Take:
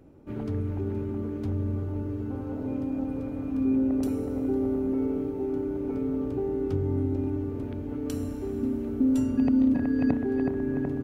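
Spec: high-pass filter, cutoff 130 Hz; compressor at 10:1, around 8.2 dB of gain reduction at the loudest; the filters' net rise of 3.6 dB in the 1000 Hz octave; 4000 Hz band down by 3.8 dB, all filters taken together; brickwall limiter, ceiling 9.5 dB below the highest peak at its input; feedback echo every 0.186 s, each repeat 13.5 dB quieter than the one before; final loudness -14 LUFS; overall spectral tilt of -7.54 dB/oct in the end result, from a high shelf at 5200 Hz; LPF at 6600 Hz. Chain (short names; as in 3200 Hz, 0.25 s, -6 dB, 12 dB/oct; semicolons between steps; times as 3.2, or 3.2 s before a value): HPF 130 Hz; LPF 6600 Hz; bell 1000 Hz +5 dB; bell 4000 Hz -7.5 dB; high shelf 5200 Hz +5.5 dB; compressor 10:1, threshold -27 dBFS; limiter -28.5 dBFS; feedback echo 0.186 s, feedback 21%, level -13.5 dB; gain +21 dB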